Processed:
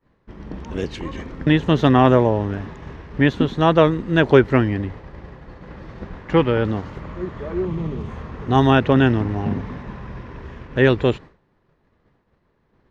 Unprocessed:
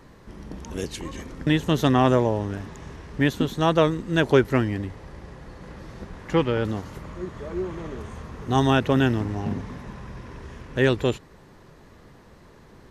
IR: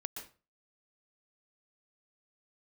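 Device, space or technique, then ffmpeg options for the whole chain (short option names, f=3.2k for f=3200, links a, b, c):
hearing-loss simulation: -filter_complex "[0:a]asettb=1/sr,asplit=3[a][b][c];[a]atrim=end=7.654[d];[b]atrim=start=7.65:end=8.09,asetpts=PTS-STARTPTS,afade=t=in:d=0.004:c=qsin,afade=t=out:st=0.436:d=0.004:c=qsin,equalizer=f=160:t=o:w=0.67:g=10,equalizer=f=630:t=o:w=0.67:g=-5,equalizer=f=1.6k:t=o:w=0.67:g=-9[e];[c]atrim=start=8.086[f];[d][e]acrossfade=d=0.004:c1=hsin:c2=qsin[g];[g][f]acrossfade=d=0.004:c1=qsin:c2=hsin,lowpass=3.3k,agate=range=-33dB:threshold=-37dB:ratio=3:detection=peak,volume=5dB"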